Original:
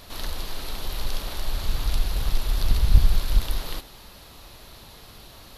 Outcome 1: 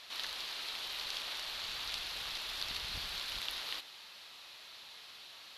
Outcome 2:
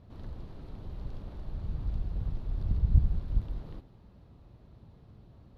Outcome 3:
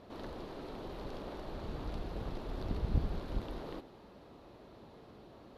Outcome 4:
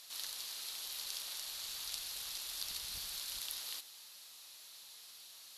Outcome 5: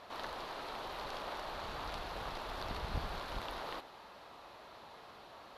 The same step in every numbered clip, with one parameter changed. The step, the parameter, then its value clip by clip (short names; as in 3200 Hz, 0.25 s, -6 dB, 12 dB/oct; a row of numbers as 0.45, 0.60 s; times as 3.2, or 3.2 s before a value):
band-pass, frequency: 3000, 120, 340, 7800, 890 Hz